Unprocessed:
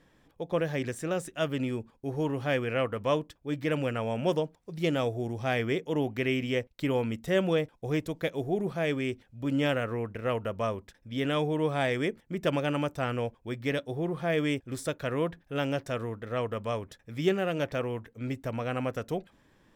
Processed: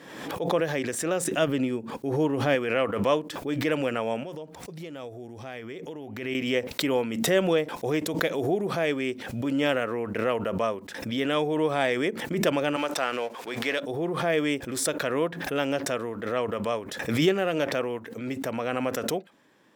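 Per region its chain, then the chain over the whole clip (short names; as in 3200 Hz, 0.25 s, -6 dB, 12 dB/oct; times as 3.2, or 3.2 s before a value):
1.24–2.55 low shelf 400 Hz +6.5 dB + upward expander, over -46 dBFS
4.23–6.35 bell 76 Hz +14.5 dB 0.91 oct + compressor 16:1, threshold -36 dBFS
12.76–13.8 G.711 law mismatch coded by mu + weighting filter A + gate -49 dBFS, range -10 dB
whole clip: HPF 230 Hz 12 dB/oct; backwards sustainer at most 51 dB/s; gain +3.5 dB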